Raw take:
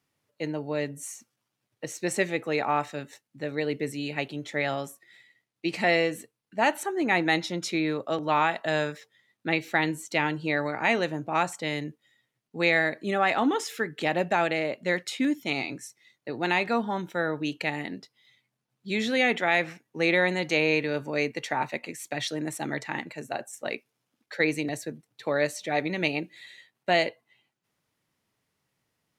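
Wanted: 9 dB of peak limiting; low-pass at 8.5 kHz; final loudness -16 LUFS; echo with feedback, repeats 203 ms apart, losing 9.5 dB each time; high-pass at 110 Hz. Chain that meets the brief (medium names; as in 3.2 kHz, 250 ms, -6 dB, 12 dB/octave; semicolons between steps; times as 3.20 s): high-pass 110 Hz; low-pass 8.5 kHz; peak limiter -17.5 dBFS; feedback delay 203 ms, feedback 33%, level -9.5 dB; trim +14.5 dB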